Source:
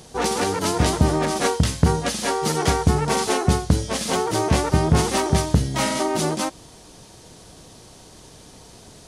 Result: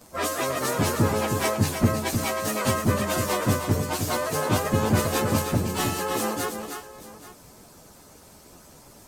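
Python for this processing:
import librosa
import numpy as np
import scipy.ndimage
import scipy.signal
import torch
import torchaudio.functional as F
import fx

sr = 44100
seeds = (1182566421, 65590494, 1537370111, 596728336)

y = fx.pitch_bins(x, sr, semitones=5.5)
y = fx.echo_multitap(y, sr, ms=(314, 833), db=(-6.5, -17.0))
y = fx.hpss(y, sr, part='harmonic', gain_db=-7)
y = y * 10.0 ** (2.0 / 20.0)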